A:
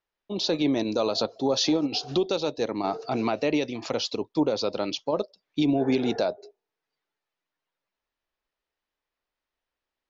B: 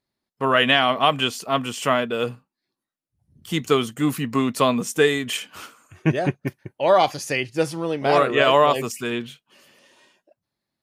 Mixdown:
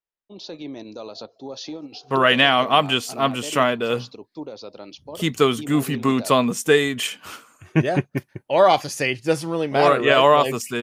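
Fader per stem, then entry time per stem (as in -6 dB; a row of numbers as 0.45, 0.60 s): -10.5, +1.5 dB; 0.00, 1.70 s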